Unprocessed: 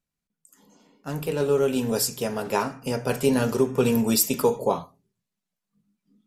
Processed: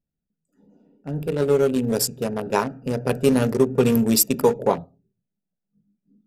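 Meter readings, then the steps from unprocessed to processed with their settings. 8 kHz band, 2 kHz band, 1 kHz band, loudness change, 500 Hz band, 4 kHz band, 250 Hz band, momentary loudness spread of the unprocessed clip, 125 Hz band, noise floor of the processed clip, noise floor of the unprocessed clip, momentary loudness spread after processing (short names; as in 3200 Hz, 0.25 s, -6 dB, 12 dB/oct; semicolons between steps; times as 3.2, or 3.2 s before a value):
+2.0 dB, +0.5 dB, +1.5 dB, +3.0 dB, +3.0 dB, +1.5 dB, +3.5 dB, 9 LU, +4.0 dB, -83 dBFS, under -85 dBFS, 10 LU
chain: Wiener smoothing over 41 samples; gain +4 dB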